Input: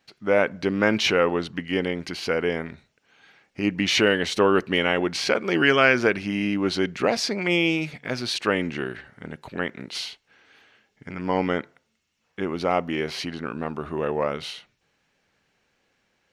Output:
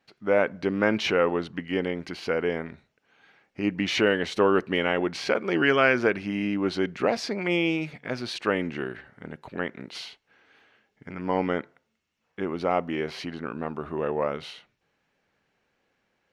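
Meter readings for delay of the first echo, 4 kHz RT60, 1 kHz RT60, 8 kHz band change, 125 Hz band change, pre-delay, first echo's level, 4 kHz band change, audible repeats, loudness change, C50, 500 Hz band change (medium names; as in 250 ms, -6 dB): no echo, no reverb, no reverb, -9.0 dB, -3.0 dB, no reverb, no echo, -6.5 dB, no echo, -2.5 dB, no reverb, -1.5 dB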